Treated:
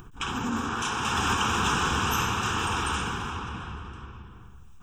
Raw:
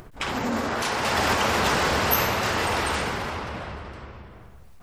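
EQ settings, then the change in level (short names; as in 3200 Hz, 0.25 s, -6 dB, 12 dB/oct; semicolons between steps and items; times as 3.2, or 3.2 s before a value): fixed phaser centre 3000 Hz, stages 8; 0.0 dB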